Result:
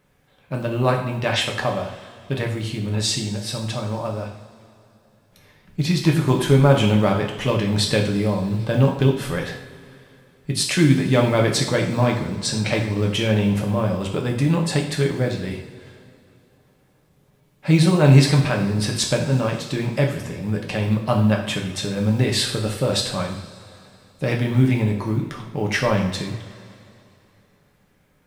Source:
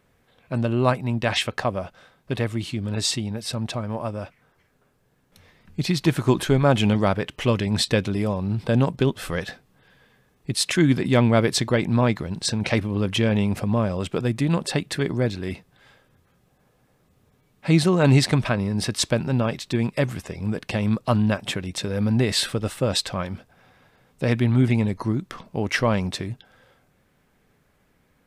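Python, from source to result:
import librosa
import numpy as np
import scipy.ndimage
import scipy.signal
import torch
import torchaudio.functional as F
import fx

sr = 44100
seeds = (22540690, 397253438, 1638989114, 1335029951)

y = fx.quant_companded(x, sr, bits=8)
y = fx.rev_double_slope(y, sr, seeds[0], early_s=0.57, late_s=2.9, knee_db=-17, drr_db=0.0)
y = y * librosa.db_to_amplitude(-1.0)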